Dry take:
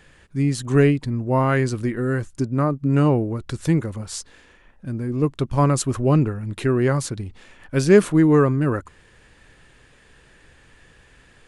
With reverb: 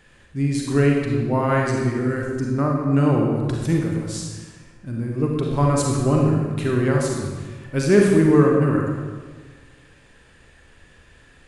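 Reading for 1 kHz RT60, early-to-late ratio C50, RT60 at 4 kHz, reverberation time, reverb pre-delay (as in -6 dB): 1.4 s, 0.5 dB, 1.1 s, 1.5 s, 35 ms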